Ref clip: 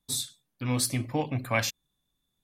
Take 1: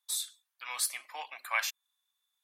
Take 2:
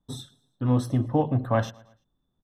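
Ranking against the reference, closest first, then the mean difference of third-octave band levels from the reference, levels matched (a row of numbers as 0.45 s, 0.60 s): 2, 1; 7.0 dB, 13.0 dB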